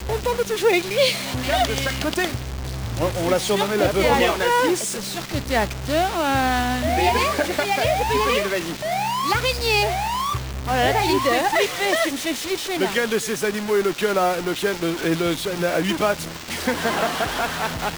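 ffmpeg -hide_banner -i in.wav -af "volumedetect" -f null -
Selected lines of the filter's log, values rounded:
mean_volume: -21.6 dB
max_volume: -5.2 dB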